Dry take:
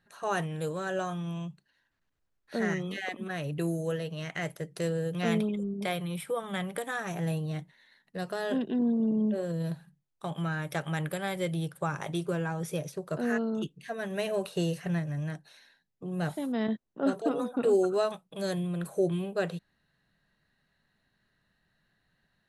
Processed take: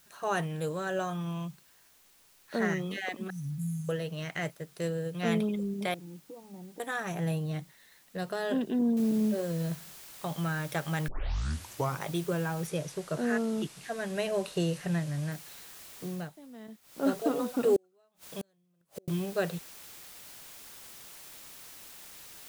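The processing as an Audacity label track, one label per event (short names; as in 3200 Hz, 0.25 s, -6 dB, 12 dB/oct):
1.150000	2.670000	bell 1100 Hz +6 dB 0.84 oct
3.300000	3.890000	brick-wall FIR band-stop 270–5300 Hz
4.500000	5.420000	upward expander, over -42 dBFS
5.940000	6.800000	vocal tract filter u
8.970000	8.970000	noise floor step -62 dB -49 dB
11.080000	11.080000	tape start 0.93 s
12.670000	15.320000	LPF 11000 Hz 24 dB/oct
16.060000	17.070000	dip -17 dB, fades 0.25 s
17.760000	19.080000	flipped gate shuts at -26 dBFS, range -40 dB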